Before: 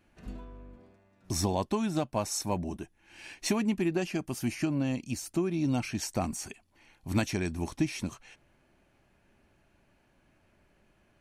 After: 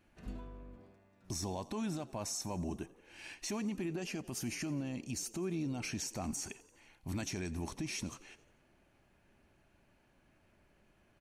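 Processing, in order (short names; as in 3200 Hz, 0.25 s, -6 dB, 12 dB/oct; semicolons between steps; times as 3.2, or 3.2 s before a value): dynamic EQ 6400 Hz, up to +6 dB, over -51 dBFS, Q 1.9; limiter -27.5 dBFS, peak gain reduction 12 dB; on a send: frequency-shifting echo 88 ms, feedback 62%, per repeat +52 Hz, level -20.5 dB; on the sum: gain -2.5 dB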